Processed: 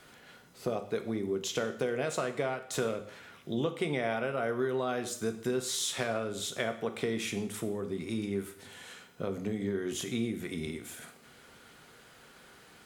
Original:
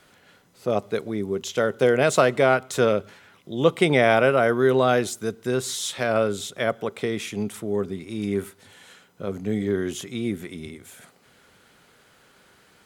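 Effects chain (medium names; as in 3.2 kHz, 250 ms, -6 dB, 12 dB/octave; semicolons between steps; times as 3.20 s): compression 6:1, threshold -30 dBFS, peak gain reduction 17 dB; two-slope reverb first 0.6 s, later 2 s, from -26 dB, DRR 7 dB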